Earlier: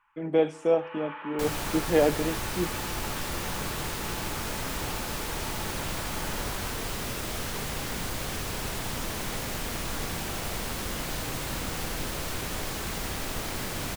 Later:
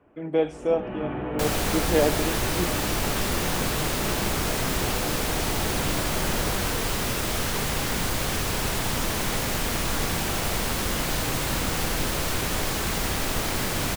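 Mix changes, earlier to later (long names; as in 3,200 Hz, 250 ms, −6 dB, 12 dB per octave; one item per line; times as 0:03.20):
first sound: remove linear-phase brick-wall high-pass 820 Hz
second sound +6.5 dB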